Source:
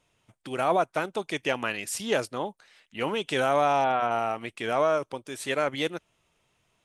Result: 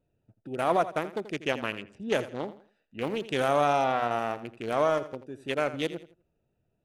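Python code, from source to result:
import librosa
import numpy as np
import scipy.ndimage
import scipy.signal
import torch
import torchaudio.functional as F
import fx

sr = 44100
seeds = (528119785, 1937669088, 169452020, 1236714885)

p1 = fx.wiener(x, sr, points=41)
p2 = fx.high_shelf(p1, sr, hz=9600.0, db=7.5)
p3 = p2 + fx.echo_feedback(p2, sr, ms=83, feedback_pct=30, wet_db=-14.0, dry=0)
y = fx.env_lowpass(p3, sr, base_hz=1600.0, full_db=-25.0, at=(1.83, 2.46))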